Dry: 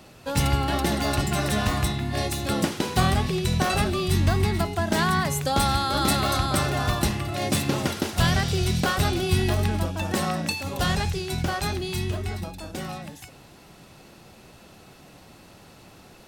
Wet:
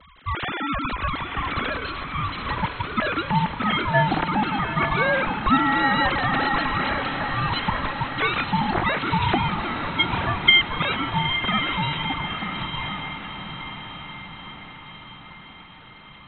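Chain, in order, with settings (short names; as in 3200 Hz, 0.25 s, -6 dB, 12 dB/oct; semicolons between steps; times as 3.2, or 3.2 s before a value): sine-wave speech; vibrato 0.33 Hz 17 cents; ring modulator 530 Hz; diffused feedback echo 0.903 s, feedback 57%, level -7 dB; gain +2.5 dB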